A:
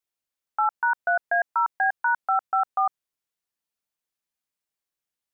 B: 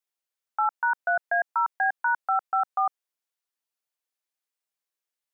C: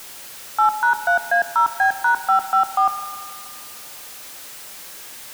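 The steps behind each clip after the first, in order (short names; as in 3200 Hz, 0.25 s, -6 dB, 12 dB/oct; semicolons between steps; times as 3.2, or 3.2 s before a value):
HPF 370 Hz 12 dB/oct; gain -1.5 dB
zero-crossing step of -36 dBFS; reverb RT60 2.1 s, pre-delay 3 ms, DRR 9 dB; gain +5.5 dB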